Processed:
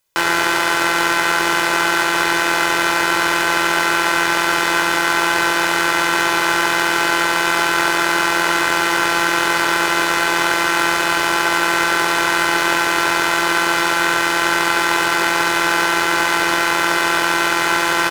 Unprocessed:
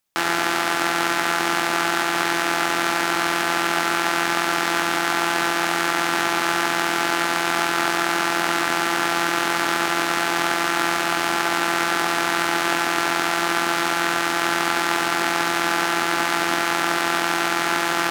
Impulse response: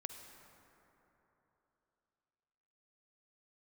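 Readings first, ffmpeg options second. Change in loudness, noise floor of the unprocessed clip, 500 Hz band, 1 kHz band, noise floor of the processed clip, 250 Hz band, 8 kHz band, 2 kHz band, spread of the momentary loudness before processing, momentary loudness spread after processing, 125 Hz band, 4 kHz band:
+5.0 dB, -23 dBFS, +4.0 dB, +4.0 dB, -18 dBFS, +3.0 dB, +4.5 dB, +6.0 dB, 0 LU, 0 LU, +3.0 dB, +5.0 dB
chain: -af "aecho=1:1:2:0.64,acontrast=46,volume=0.891"

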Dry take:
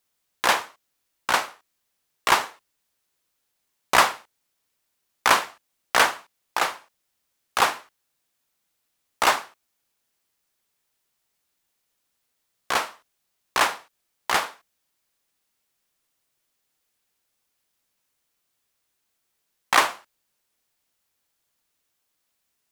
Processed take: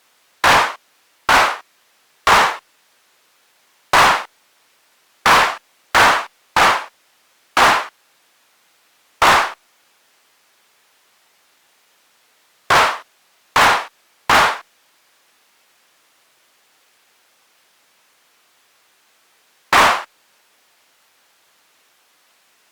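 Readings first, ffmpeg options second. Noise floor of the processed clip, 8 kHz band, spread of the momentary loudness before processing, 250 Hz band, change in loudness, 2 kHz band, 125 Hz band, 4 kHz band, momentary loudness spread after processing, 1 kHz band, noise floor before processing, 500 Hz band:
-59 dBFS, +5.0 dB, 16 LU, +10.0 dB, +8.5 dB, +9.5 dB, +14.5 dB, +8.0 dB, 12 LU, +10.0 dB, -76 dBFS, +9.0 dB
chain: -filter_complex "[0:a]asplit=2[s0][s1];[s1]highpass=f=720:p=1,volume=44.7,asoftclip=type=tanh:threshold=0.794[s2];[s0][s2]amix=inputs=2:normalize=0,lowpass=f=2300:p=1,volume=0.501" -ar 48000 -c:a libopus -b:a 64k

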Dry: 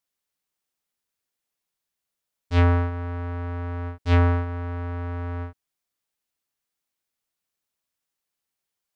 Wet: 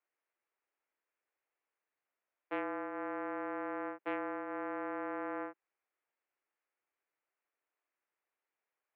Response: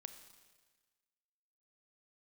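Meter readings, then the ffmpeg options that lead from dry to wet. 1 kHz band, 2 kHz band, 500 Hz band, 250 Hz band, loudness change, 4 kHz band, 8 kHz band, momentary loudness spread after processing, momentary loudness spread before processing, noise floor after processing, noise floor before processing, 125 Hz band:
-7.0 dB, -8.0 dB, -7.5 dB, -11.0 dB, -14.0 dB, under -20 dB, no reading, 2 LU, 12 LU, under -85 dBFS, -85 dBFS, under -40 dB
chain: -af "highpass=f=260:t=q:w=0.5412,highpass=f=260:t=q:w=1.307,lowpass=f=2400:t=q:w=0.5176,lowpass=f=2400:t=q:w=0.7071,lowpass=f=2400:t=q:w=1.932,afreqshift=58,acompressor=threshold=0.0158:ratio=12,volume=1.12"

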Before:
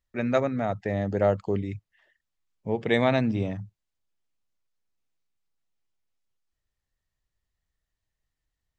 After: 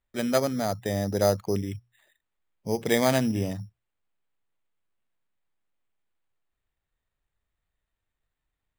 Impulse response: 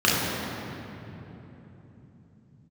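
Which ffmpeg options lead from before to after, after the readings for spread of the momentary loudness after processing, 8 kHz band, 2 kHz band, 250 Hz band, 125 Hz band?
16 LU, no reading, -1.5 dB, 0.0 dB, -1.0 dB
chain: -af "bandreject=f=60:t=h:w=6,bandreject=f=120:t=h:w=6,acrusher=samples=8:mix=1:aa=0.000001"

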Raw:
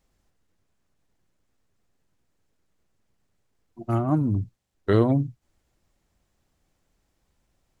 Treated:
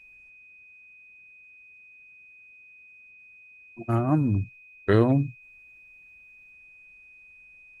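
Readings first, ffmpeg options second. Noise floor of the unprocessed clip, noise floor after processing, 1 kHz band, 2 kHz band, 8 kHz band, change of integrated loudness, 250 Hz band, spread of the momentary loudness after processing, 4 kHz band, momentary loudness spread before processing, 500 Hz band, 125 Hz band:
-73 dBFS, -52 dBFS, 0.0 dB, +6.0 dB, no reading, -0.5 dB, 0.0 dB, 15 LU, 0.0 dB, 15 LU, 0.0 dB, 0.0 dB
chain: -af "equalizer=f=1700:t=o:w=0.32:g=7,aeval=exprs='val(0)+0.00355*sin(2*PI*2500*n/s)':c=same" -ar 48000 -c:a libopus -b:a 24k

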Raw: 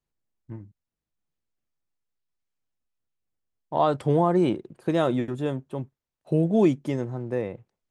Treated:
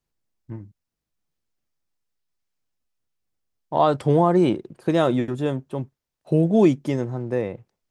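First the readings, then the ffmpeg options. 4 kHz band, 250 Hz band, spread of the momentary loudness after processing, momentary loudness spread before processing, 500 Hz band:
+4.0 dB, +3.5 dB, 19 LU, 19 LU, +3.5 dB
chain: -af "equalizer=f=5200:w=2.3:g=3,volume=1.5"

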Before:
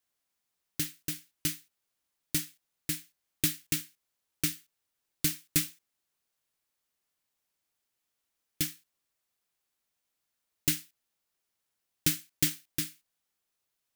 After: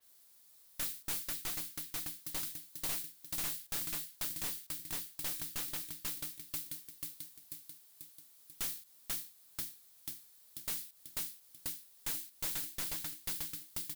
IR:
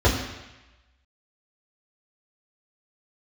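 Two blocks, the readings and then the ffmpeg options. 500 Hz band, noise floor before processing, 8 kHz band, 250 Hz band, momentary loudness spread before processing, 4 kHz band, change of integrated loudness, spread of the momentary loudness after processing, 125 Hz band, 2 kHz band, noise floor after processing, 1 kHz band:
-4.0 dB, -83 dBFS, -5.0 dB, -14.0 dB, 10 LU, -5.5 dB, -6.5 dB, 12 LU, -13.0 dB, -5.5 dB, -63 dBFS, +5.5 dB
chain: -af "aexciter=amount=2.1:drive=5.9:freq=3600,acompressor=threshold=0.0316:ratio=6,aecho=1:1:490|980|1470|1960|2450|2940:0.473|0.241|0.123|0.0628|0.032|0.0163,alimiter=limit=0.178:level=0:latency=1:release=304,aeval=exprs='(tanh(31.6*val(0)+0.75)-tanh(0.75))/31.6':c=same,aeval=exprs='0.0531*sin(PI/2*7.08*val(0)/0.0531)':c=same,adynamicequalizer=threshold=0.00501:dfrequency=4300:dqfactor=0.7:tfrequency=4300:tqfactor=0.7:attack=5:release=100:ratio=0.375:range=2:mode=cutabove:tftype=highshelf,volume=0.473"

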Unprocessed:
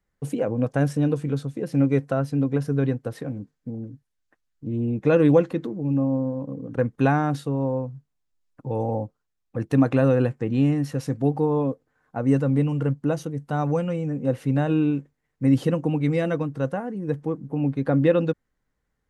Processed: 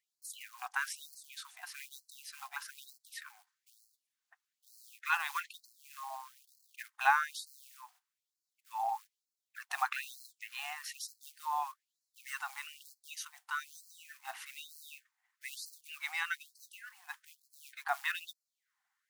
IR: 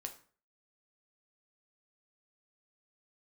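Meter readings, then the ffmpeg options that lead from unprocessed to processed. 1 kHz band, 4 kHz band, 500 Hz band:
-4.5 dB, no reading, -33.0 dB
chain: -af "acrusher=bits=9:mode=log:mix=0:aa=0.000001,afftfilt=real='re*gte(b*sr/1024,680*pow(4100/680,0.5+0.5*sin(2*PI*1.1*pts/sr)))':imag='im*gte(b*sr/1024,680*pow(4100/680,0.5+0.5*sin(2*PI*1.1*pts/sr)))':win_size=1024:overlap=0.75,volume=1.12"

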